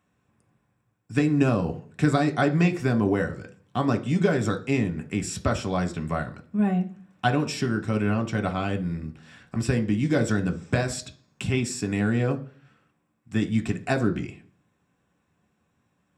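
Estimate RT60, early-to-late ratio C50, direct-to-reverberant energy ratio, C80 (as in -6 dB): 0.45 s, 16.0 dB, 4.5 dB, 21.0 dB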